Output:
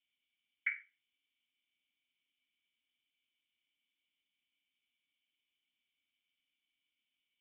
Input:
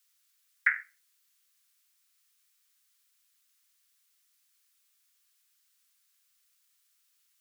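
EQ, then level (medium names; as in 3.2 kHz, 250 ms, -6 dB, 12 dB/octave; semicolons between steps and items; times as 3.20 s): cascade formant filter i; +12.0 dB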